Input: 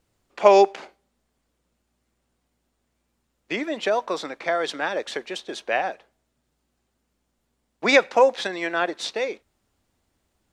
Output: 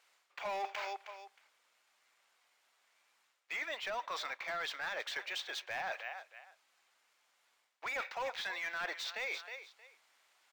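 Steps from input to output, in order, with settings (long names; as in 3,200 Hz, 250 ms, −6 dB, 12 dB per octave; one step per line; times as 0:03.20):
on a send: repeating echo 314 ms, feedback 21%, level −23 dB
on the sum: de-essing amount 80%
high-pass filter 930 Hz 12 dB per octave
parametric band 2,200 Hz +3.5 dB 0.26 octaves
mid-hump overdrive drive 18 dB, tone 5,600 Hz, clips at −11.5 dBFS
reversed playback
downward compressor 6 to 1, threshold −34 dBFS, peak gain reduction 16.5 dB
reversed playback
linearly interpolated sample-rate reduction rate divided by 2×
level −4 dB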